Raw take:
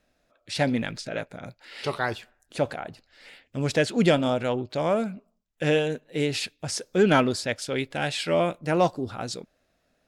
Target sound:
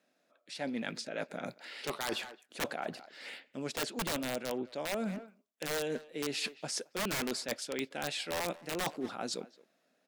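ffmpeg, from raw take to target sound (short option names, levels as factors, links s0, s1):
-filter_complex "[0:a]highpass=f=190:w=0.5412,highpass=f=190:w=1.3066,dynaudnorm=f=300:g=9:m=6.68,aeval=exprs='(mod(2.82*val(0)+1,2)-1)/2.82':c=same,asplit=2[s0][s1];[s1]adelay=220,highpass=300,lowpass=3400,asoftclip=type=hard:threshold=0.126,volume=0.0794[s2];[s0][s2]amix=inputs=2:normalize=0,areverse,acompressor=threshold=0.0316:ratio=6,areverse,volume=0.631"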